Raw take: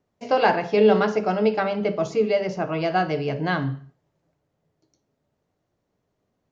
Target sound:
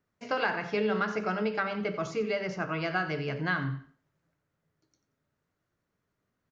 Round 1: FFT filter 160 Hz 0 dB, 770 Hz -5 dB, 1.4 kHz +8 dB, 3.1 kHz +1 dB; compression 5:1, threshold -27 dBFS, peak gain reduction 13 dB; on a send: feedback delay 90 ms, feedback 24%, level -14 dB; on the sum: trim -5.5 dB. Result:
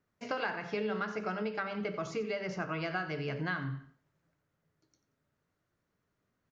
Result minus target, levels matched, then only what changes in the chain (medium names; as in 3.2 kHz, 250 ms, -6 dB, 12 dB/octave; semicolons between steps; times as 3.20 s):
compression: peak gain reduction +6 dB
change: compression 5:1, threshold -19.5 dBFS, peak gain reduction 7 dB